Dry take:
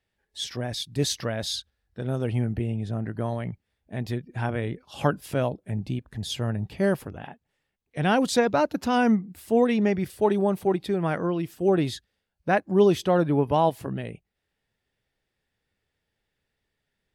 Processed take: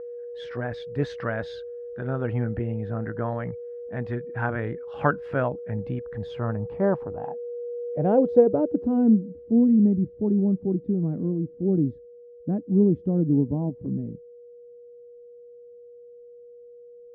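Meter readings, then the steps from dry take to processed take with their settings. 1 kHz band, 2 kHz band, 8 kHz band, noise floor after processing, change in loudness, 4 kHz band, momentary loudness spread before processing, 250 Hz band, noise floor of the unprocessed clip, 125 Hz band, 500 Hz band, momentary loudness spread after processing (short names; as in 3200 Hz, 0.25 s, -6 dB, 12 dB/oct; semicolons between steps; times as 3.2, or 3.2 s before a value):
-6.0 dB, -3.0 dB, under -25 dB, -47 dBFS, +0.5 dB, under -15 dB, 13 LU, +3.5 dB, -81 dBFS, +1.0 dB, -0.5 dB, 14 LU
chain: whine 480 Hz -34 dBFS; low-pass sweep 1500 Hz -> 250 Hz, 6.06–9.61; gain -1 dB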